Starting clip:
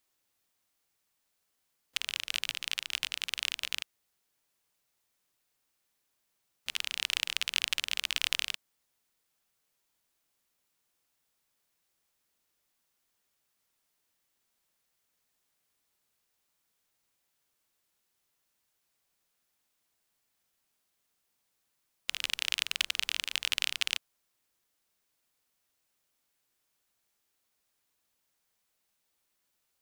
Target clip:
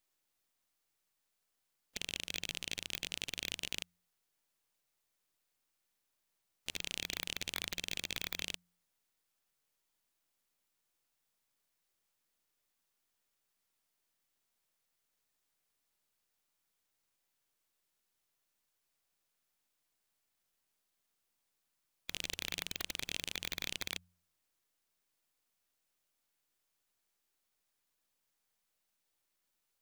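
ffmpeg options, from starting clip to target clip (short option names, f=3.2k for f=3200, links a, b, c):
-af "aeval=exprs='if(lt(val(0),0),0.447*val(0),val(0))':c=same,bandreject=f=88.02:t=h:w=4,bandreject=f=176.04:t=h:w=4,aeval=exprs='0.224*(abs(mod(val(0)/0.224+3,4)-2)-1)':c=same,afftfilt=real='re*lt(hypot(re,im),0.0501)':imag='im*lt(hypot(re,im),0.0501)':win_size=1024:overlap=0.75,volume=-2dB"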